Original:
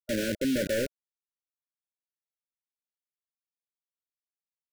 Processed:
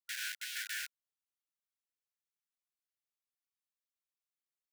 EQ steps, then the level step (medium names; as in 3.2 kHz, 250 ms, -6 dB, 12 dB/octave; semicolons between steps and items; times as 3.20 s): brick-wall FIR high-pass 1 kHz; -3.0 dB